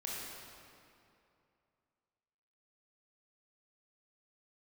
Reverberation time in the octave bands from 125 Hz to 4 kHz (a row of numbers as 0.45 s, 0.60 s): 2.8 s, 2.7 s, 2.7 s, 2.6 s, 2.2 s, 1.8 s